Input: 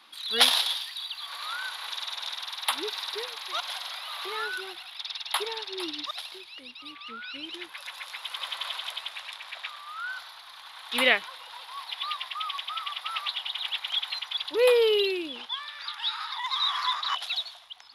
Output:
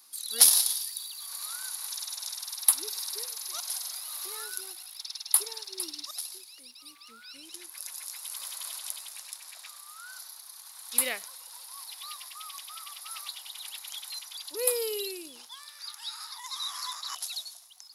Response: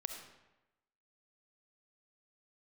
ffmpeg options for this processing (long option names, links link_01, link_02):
-filter_complex "[0:a]aexciter=amount=13.4:drive=7.2:freq=5100,asplit=2[link_01][link_02];[1:a]atrim=start_sample=2205,atrim=end_sample=6174,lowpass=frequency=1900:width=0.5412,lowpass=frequency=1900:width=1.3066[link_03];[link_02][link_03]afir=irnorm=-1:irlink=0,volume=-15.5dB[link_04];[link_01][link_04]amix=inputs=2:normalize=0,volume=-12dB"